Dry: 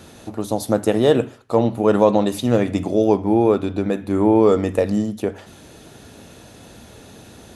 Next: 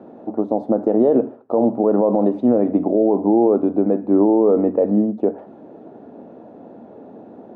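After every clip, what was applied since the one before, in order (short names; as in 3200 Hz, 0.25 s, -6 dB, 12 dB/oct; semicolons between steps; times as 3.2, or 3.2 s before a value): Chebyshev band-pass 240–750 Hz, order 2; maximiser +12 dB; gain -5.5 dB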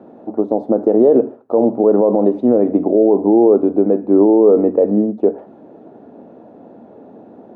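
dynamic EQ 410 Hz, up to +6 dB, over -28 dBFS, Q 1.8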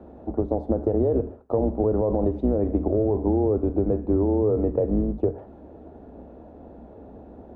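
octaver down 2 oct, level -1 dB; compressor 4:1, threshold -14 dBFS, peak gain reduction 8 dB; gain -5 dB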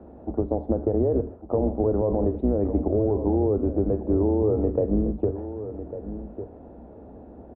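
air absorption 340 m; on a send: echo 1.151 s -11.5 dB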